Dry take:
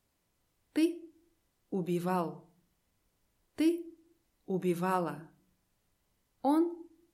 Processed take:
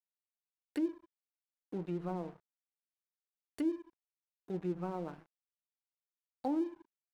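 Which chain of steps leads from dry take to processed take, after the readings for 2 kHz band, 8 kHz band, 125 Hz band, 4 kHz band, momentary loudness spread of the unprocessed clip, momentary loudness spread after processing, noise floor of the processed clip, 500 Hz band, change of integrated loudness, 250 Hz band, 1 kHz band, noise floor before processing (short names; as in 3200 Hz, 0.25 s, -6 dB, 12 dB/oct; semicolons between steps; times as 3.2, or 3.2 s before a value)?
-12.5 dB, under -10 dB, -5.5 dB, under -10 dB, 17 LU, 11 LU, under -85 dBFS, -6.0 dB, -6.0 dB, -5.5 dB, -10.0 dB, -78 dBFS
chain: high shelf 4400 Hz +10.5 dB; treble ducked by the level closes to 580 Hz, closed at -26 dBFS; crossover distortion -49 dBFS; gain -4.5 dB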